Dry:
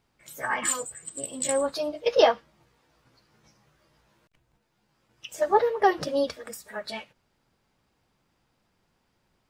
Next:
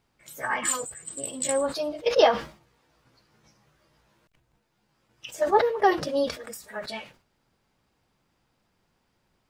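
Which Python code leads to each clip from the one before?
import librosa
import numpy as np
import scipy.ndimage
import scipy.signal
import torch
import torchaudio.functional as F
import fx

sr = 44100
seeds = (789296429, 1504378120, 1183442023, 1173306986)

y = fx.sustainer(x, sr, db_per_s=140.0)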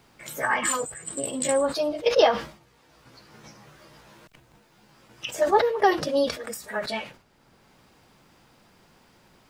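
y = fx.band_squash(x, sr, depth_pct=40)
y = y * librosa.db_to_amplitude(2.5)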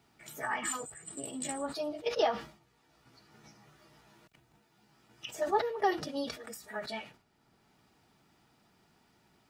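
y = fx.notch_comb(x, sr, f0_hz=530.0)
y = y * librosa.db_to_amplitude(-8.5)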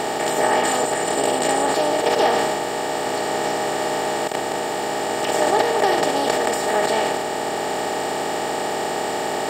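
y = fx.bin_compress(x, sr, power=0.2)
y = y * librosa.db_to_amplitude(4.5)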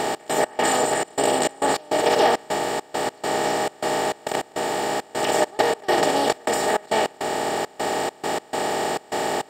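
y = fx.step_gate(x, sr, bpm=102, pattern='x.x.xxx.x', floor_db=-24.0, edge_ms=4.5)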